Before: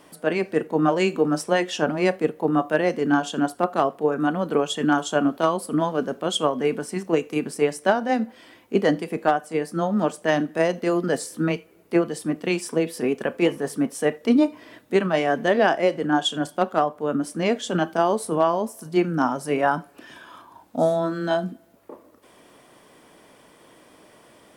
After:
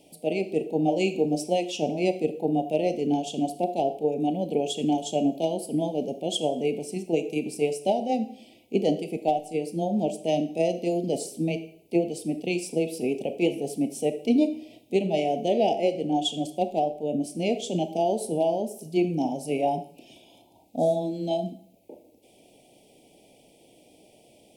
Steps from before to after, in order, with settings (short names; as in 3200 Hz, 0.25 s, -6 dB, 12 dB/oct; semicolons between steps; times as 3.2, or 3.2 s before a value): elliptic band-stop 780–2400 Hz, stop band 40 dB; on a send at -11.5 dB: dynamic EQ 400 Hz, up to +7 dB, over -36 dBFS, Q 2.4 + reverb RT60 0.55 s, pre-delay 4 ms; on the sum: gain -3 dB